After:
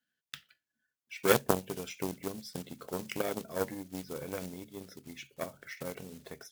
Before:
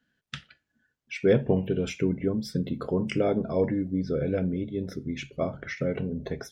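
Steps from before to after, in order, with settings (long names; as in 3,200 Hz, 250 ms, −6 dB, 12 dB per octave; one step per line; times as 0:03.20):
one scale factor per block 5 bits
harmonic generator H 3 −11 dB, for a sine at −9 dBFS
spectral tilt +2.5 dB per octave
level +4 dB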